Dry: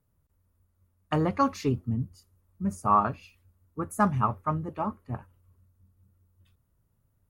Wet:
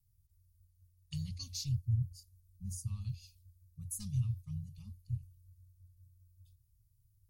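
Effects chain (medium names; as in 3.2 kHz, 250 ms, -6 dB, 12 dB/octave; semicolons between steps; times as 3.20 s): dynamic bell 3 kHz, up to +6 dB, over -43 dBFS, Q 0.97; elliptic band-stop 110–4500 Hz, stop band 50 dB; trim +2 dB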